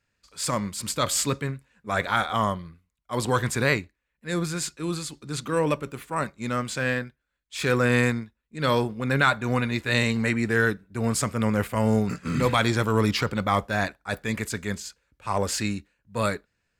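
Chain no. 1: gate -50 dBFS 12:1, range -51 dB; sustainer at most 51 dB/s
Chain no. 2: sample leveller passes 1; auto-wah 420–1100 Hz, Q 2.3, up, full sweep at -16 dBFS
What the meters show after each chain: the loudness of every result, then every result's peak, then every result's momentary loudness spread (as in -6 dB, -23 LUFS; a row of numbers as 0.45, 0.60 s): -25.0, -31.0 LUFS; -6.0, -10.0 dBFS; 11, 17 LU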